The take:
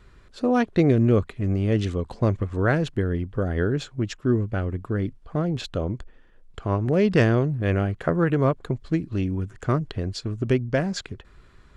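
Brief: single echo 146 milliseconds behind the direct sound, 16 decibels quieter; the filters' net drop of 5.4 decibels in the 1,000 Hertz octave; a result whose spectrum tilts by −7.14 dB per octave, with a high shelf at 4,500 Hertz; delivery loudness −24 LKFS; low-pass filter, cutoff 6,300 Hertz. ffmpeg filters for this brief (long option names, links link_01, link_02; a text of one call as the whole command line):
ffmpeg -i in.wav -af "lowpass=6300,equalizer=frequency=1000:width_type=o:gain=-8.5,highshelf=frequency=4500:gain=6.5,aecho=1:1:146:0.158,volume=1dB" out.wav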